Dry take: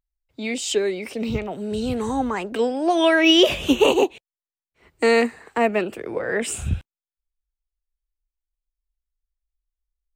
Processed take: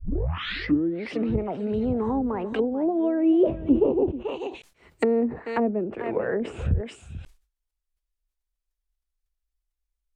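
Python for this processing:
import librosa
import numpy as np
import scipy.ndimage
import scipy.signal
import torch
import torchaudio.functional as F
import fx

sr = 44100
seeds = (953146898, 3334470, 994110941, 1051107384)

y = fx.tape_start_head(x, sr, length_s=1.02)
y = y + 10.0 ** (-14.5 / 20.0) * np.pad(y, (int(438 * sr / 1000.0), 0))[:len(y)]
y = fx.env_lowpass_down(y, sr, base_hz=370.0, full_db=-18.5)
y = fx.sustainer(y, sr, db_per_s=140.0)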